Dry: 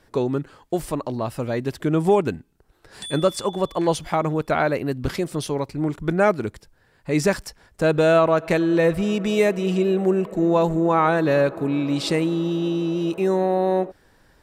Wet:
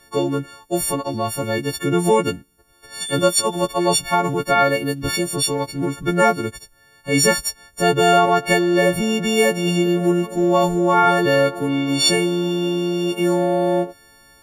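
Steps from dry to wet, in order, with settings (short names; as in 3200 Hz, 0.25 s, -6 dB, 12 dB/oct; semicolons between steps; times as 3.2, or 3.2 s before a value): frequency quantiser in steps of 4 st; gain +2 dB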